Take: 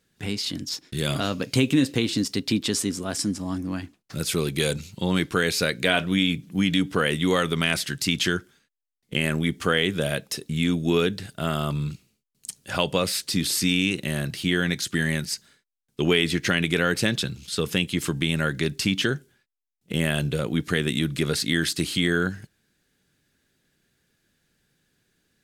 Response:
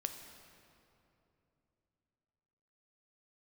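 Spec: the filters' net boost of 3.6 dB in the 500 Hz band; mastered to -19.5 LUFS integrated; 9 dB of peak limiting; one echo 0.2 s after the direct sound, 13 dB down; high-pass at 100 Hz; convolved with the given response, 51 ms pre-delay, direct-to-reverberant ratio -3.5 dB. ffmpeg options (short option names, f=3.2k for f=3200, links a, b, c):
-filter_complex "[0:a]highpass=100,equalizer=f=500:t=o:g=4.5,alimiter=limit=-13.5dB:level=0:latency=1,aecho=1:1:200:0.224,asplit=2[a][b];[1:a]atrim=start_sample=2205,adelay=51[c];[b][c]afir=irnorm=-1:irlink=0,volume=4dB[d];[a][d]amix=inputs=2:normalize=0,volume=1.5dB"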